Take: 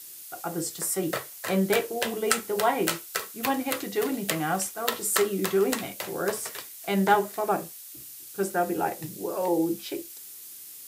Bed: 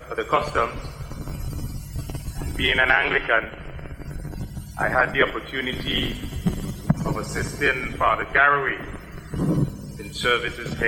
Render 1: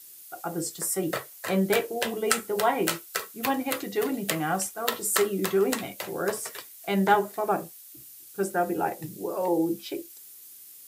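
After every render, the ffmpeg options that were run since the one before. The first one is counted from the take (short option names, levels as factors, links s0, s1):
-af "afftdn=nr=6:nf=-44"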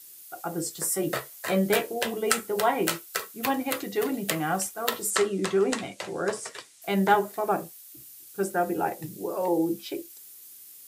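-filter_complex "[0:a]asettb=1/sr,asplit=3[s0][s1][s2];[s0]atrim=end=0.754[s3];[s1]atrim=start=0.75:end=1.93,asetpts=PTS-STARTPTS,afade=t=in:d=0.004:c=qsin,afade=t=out:st=1.176:d=0.004:c=qsin,asplit=2[s4][s5];[s5]adelay=14,volume=0.562[s6];[s4][s6]amix=inputs=2:normalize=0,atrim=end_sample=52038[s7];[s2]atrim=start=1.926[s8];[s3][s7]acrossfade=d=0.004:c1=hsin:c2=qsin[s9];[s9][s8]acrossfade=d=0.004:c1=qsin:c2=hsin,asettb=1/sr,asplit=3[s10][s11][s12];[s10]atrim=end=5.104[s13];[s11]atrim=start=5.1:end=6.82,asetpts=PTS-STARTPTS,afade=t=in:d=0.004:c=qsin,afade=t=out:st=1.716:d=0.004:c=qsin,lowpass=f=8800:w=0.5412,lowpass=f=8800:w=1.3066[s14];[s12]atrim=start=6.816[s15];[s13][s14]acrossfade=d=0.004:c1=hsin:c2=qsin[s16];[s16][s15]acrossfade=d=0.004:c1=qsin:c2=hsin"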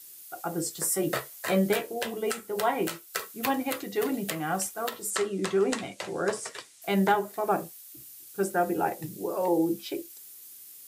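-af "alimiter=limit=0.237:level=0:latency=1:release=429"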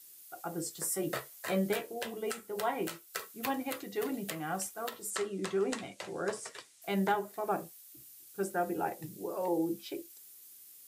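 -af "volume=0.473"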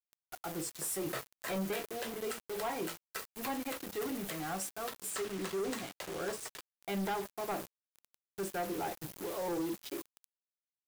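-af "acrusher=bits=6:mix=0:aa=0.000001,asoftclip=type=tanh:threshold=0.0282"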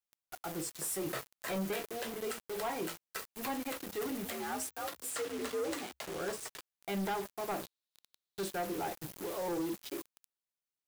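-filter_complex "[0:a]asettb=1/sr,asplit=3[s0][s1][s2];[s0]atrim=end=4.254[s3];[s1]atrim=start=4.25:end=6.06,asetpts=PTS-STARTPTS,afade=t=in:d=0.004:c=qsin,afade=t=out:st=1.806:d=0.004:c=qsin,afreqshift=64[s4];[s2]atrim=start=6.056[s5];[s3][s4]acrossfade=d=0.004:c1=hsin:c2=qsin[s6];[s6][s5]acrossfade=d=0.004:c1=qsin:c2=hsin,asettb=1/sr,asplit=3[s7][s8][s9];[s7]atrim=end=7.634[s10];[s8]atrim=start=7.63:end=8.51,asetpts=PTS-STARTPTS,afade=t=in:d=0.004:c=qsin,afade=t=out:st=0.876:d=0.004:c=qsin,equalizer=f=3900:w=2.4:g=12[s11];[s9]atrim=start=8.506[s12];[s10][s11]acrossfade=d=0.004:c1=hsin:c2=qsin[s13];[s13][s12]acrossfade=d=0.004:c1=qsin:c2=hsin"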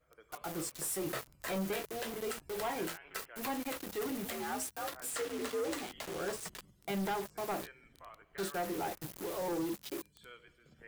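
-filter_complex "[1:a]volume=0.0211[s0];[0:a][s0]amix=inputs=2:normalize=0"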